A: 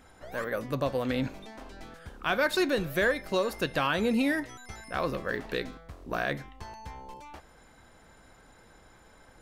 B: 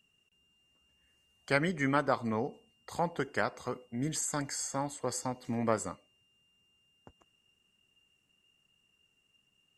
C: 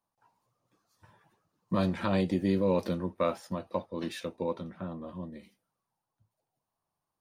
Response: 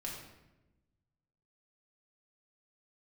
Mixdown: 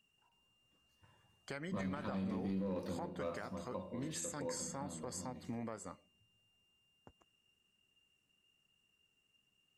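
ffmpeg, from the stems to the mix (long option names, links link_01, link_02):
-filter_complex "[1:a]volume=-5dB[link_01];[2:a]lowshelf=frequency=110:gain=6.5,asoftclip=type=hard:threshold=-18.5dB,volume=-13dB,asplit=2[link_02][link_03];[link_03]volume=-3.5dB[link_04];[link_01][link_02]amix=inputs=2:normalize=0,acompressor=threshold=-39dB:ratio=6,volume=0dB[link_05];[3:a]atrim=start_sample=2205[link_06];[link_04][link_06]afir=irnorm=-1:irlink=0[link_07];[link_05][link_07]amix=inputs=2:normalize=0,alimiter=level_in=7.5dB:limit=-24dB:level=0:latency=1:release=43,volume=-7.5dB"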